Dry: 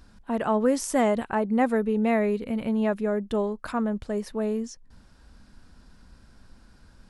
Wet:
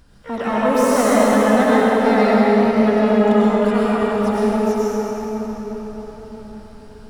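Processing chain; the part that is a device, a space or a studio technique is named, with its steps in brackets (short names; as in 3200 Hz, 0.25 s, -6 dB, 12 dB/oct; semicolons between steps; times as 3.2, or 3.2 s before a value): shimmer-style reverb (harmoniser +12 st -8 dB; reverb RT60 5.1 s, pre-delay 89 ms, DRR -8.5 dB)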